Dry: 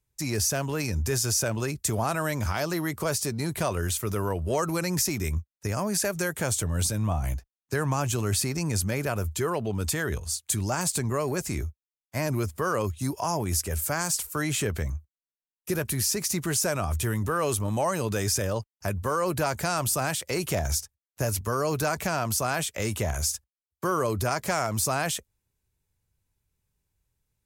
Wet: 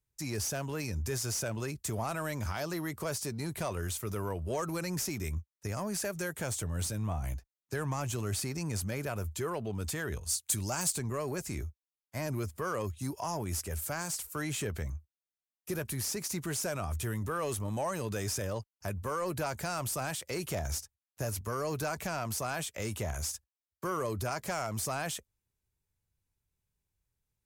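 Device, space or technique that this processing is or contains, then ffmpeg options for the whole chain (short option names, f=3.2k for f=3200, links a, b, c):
saturation between pre-emphasis and de-emphasis: -filter_complex "[0:a]highshelf=f=4.4k:g=8,asoftclip=type=tanh:threshold=-16dB,highshelf=f=4.4k:g=-8,asettb=1/sr,asplit=3[a][b][c];[a]atrim=end=10.264[d];[b]atrim=start=10.26:end=10.93,asetpts=PTS-STARTPTS,afade=t=in:d=0.004:c=qsin,afade=t=out:st=0.666:d=0.004:c=qsin,highshelf=f=3.7k:g=8[e];[c]atrim=start=10.926[f];[d][e]acrossfade=d=0.004:c1=hsin:c2=qsin[g];[g][f]acrossfade=d=0.004:c1=qsin:c2=hsin,volume=-6.5dB"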